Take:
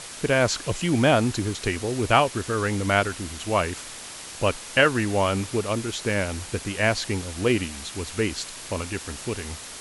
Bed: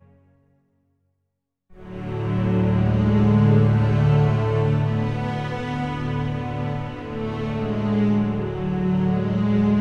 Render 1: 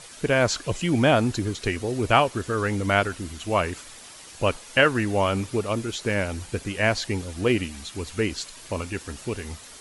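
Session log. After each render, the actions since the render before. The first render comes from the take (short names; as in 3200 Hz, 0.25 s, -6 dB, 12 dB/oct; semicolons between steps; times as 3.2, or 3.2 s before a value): denoiser 8 dB, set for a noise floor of -39 dBFS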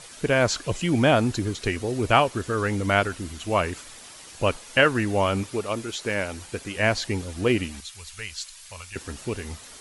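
5.43–6.76 low shelf 240 Hz -8 dB; 7.8–8.96 passive tone stack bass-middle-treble 10-0-10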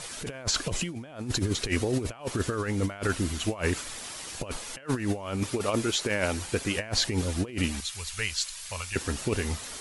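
negative-ratio compressor -28 dBFS, ratio -0.5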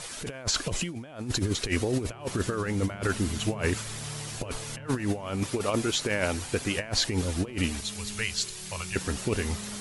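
add bed -23 dB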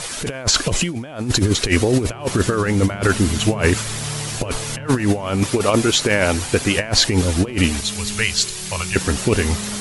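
gain +11 dB; limiter -2 dBFS, peak gain reduction 2.5 dB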